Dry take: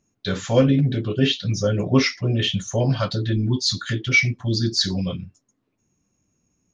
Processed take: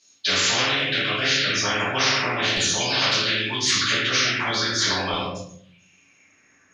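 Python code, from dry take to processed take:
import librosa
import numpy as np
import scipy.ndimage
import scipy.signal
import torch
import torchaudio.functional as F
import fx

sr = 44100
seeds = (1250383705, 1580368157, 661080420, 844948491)

y = fx.dynamic_eq(x, sr, hz=2100.0, q=0.73, threshold_db=-35.0, ratio=4.0, max_db=5)
y = fx.filter_lfo_bandpass(y, sr, shape='saw_down', hz=0.39, low_hz=880.0, high_hz=4300.0, q=4.5)
y = fx.room_shoebox(y, sr, seeds[0], volume_m3=77.0, walls='mixed', distance_m=2.6)
y = fx.spectral_comp(y, sr, ratio=10.0)
y = y * 10.0 ** (-2.0 / 20.0)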